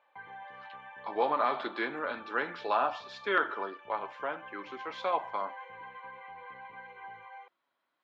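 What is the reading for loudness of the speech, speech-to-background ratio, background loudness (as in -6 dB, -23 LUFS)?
-33.0 LUFS, 14.5 dB, -47.5 LUFS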